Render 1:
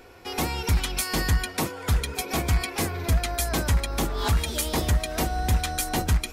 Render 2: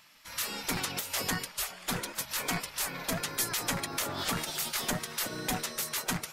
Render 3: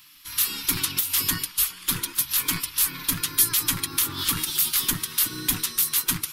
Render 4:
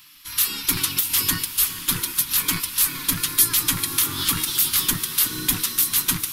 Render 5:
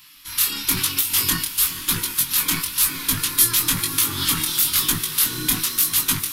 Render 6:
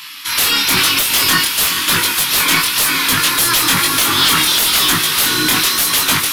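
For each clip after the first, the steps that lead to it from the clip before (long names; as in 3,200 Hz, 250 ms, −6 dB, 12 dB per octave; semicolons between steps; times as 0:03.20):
gate on every frequency bin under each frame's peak −15 dB weak
drawn EQ curve 110 Hz 0 dB, 220 Hz −8 dB, 310 Hz 0 dB, 660 Hz −29 dB, 1,000 Hz −5 dB, 2,000 Hz −6 dB, 3,300 Hz +2 dB, 7,300 Hz −2 dB, 11,000 Hz +8 dB; level +7 dB
feedback delay with all-pass diffusion 468 ms, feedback 48%, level −12 dB; level +2.5 dB
chorus effect 1 Hz, delay 18.5 ms, depth 7.2 ms; level +4.5 dB
mid-hump overdrive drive 25 dB, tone 3,500 Hz, clips at −1 dBFS; level +1.5 dB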